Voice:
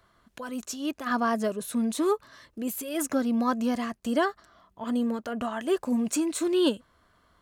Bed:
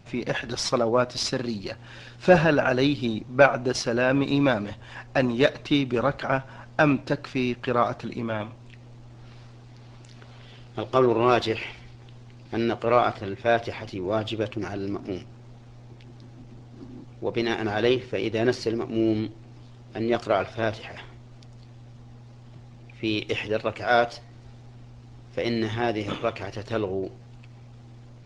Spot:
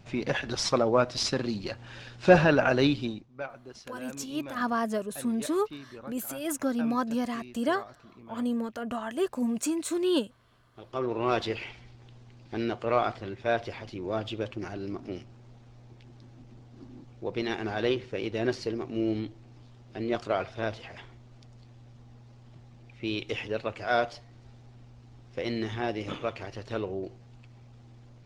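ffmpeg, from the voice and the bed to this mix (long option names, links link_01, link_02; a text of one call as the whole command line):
ffmpeg -i stem1.wav -i stem2.wav -filter_complex "[0:a]adelay=3500,volume=-2.5dB[link_01];[1:a]volume=14dB,afade=type=out:start_time=2.91:duration=0.36:silence=0.105925,afade=type=in:start_time=10.73:duration=0.69:silence=0.16788[link_02];[link_01][link_02]amix=inputs=2:normalize=0" out.wav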